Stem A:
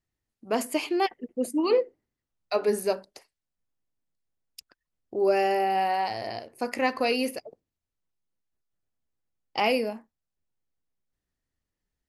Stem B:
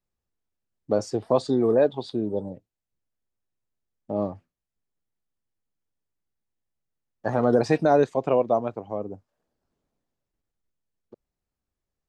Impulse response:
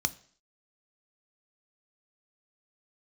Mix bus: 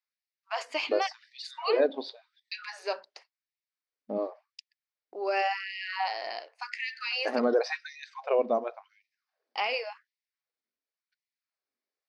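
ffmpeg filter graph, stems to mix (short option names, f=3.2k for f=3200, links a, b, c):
-filter_complex "[0:a]agate=range=-33dB:threshold=-48dB:ratio=3:detection=peak,highpass=810,alimiter=limit=-21dB:level=0:latency=1:release=36,volume=2dB[a];[1:a]volume=-1dB,asplit=2[b][c];[c]volume=-12.5dB[d];[2:a]atrim=start_sample=2205[e];[d][e]afir=irnorm=-1:irlink=0[f];[a][b][f]amix=inputs=3:normalize=0,lowpass=f=5.2k:w=0.5412,lowpass=f=5.2k:w=1.3066,afftfilt=real='re*gte(b*sr/1024,200*pow(1800/200,0.5+0.5*sin(2*PI*0.91*pts/sr)))':imag='im*gte(b*sr/1024,200*pow(1800/200,0.5+0.5*sin(2*PI*0.91*pts/sr)))':win_size=1024:overlap=0.75"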